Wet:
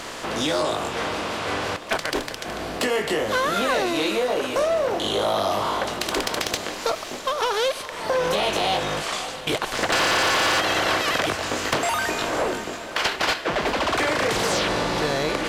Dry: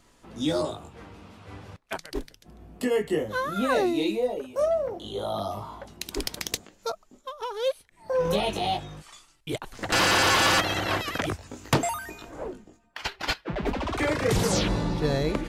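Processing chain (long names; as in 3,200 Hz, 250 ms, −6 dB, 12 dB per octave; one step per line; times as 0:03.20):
compressor on every frequency bin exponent 0.6
downward compressor, threshold −24 dBFS, peak gain reduction 9.5 dB
on a send: feedback delay with all-pass diffusion 577 ms, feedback 49%, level −13.5 dB
on the sum: mid-hump overdrive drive 15 dB, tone 6,400 Hz, clips at −10.5 dBFS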